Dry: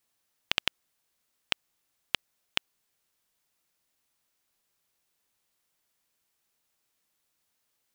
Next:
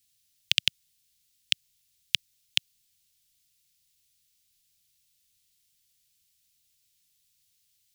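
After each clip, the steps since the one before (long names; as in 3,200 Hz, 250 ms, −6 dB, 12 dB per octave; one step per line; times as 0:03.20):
Chebyshev band-stop filter 120–3,500 Hz, order 2
level +8 dB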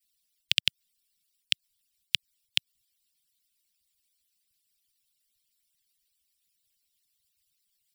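harmonic-percussive split with one part muted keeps percussive
notch filter 6,400 Hz, Q 6.8
level −1 dB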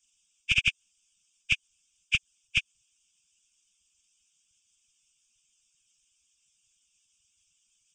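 hearing-aid frequency compression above 1,500 Hz 1.5 to 1
phaser with its sweep stopped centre 2,900 Hz, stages 8
hard clipping −18 dBFS, distortion −42 dB
level +7 dB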